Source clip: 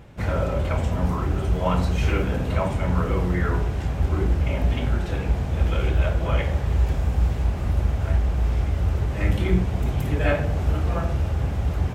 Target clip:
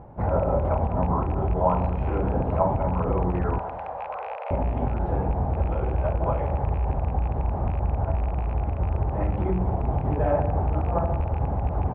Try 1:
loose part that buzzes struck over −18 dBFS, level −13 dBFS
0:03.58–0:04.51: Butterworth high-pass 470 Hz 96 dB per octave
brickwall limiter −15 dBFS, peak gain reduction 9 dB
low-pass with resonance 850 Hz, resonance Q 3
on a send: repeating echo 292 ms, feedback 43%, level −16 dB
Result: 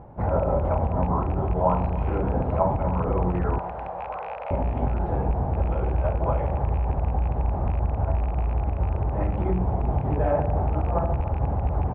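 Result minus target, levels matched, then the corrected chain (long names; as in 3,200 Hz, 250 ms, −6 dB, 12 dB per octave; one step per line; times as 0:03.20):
echo 98 ms late
loose part that buzzes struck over −18 dBFS, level −13 dBFS
0:03.58–0:04.51: Butterworth high-pass 470 Hz 96 dB per octave
brickwall limiter −15 dBFS, peak gain reduction 9 dB
low-pass with resonance 850 Hz, resonance Q 3
on a send: repeating echo 194 ms, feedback 43%, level −16 dB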